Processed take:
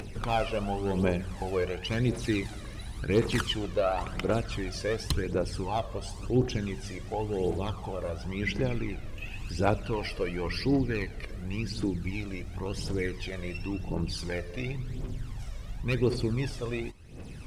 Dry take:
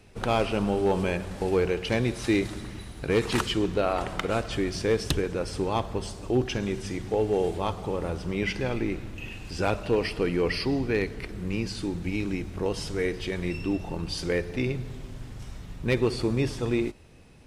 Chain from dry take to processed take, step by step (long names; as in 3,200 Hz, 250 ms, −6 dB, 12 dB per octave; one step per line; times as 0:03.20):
upward compression, threshold −30 dBFS
phase shifter 0.93 Hz, delay 1.9 ms, feedback 60%
level −5.5 dB